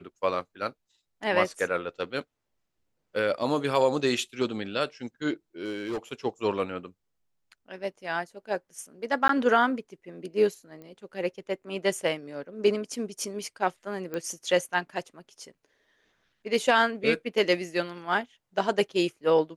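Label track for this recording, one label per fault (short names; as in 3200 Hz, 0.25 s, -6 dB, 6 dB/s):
5.650000	5.980000	clipped -27.5 dBFS
9.280000	9.290000	gap 13 ms
10.820000	10.820000	pop -32 dBFS
14.140000	14.140000	pop -20 dBFS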